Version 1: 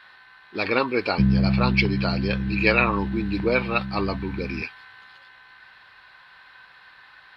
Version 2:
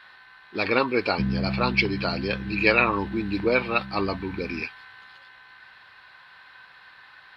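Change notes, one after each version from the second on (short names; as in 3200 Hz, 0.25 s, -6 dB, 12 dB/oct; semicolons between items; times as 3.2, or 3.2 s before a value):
background: add low shelf 330 Hz -9 dB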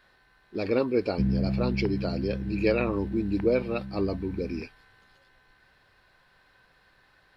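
speech: add band shelf 1900 Hz -13.5 dB 2.8 oct; master: remove HPF 68 Hz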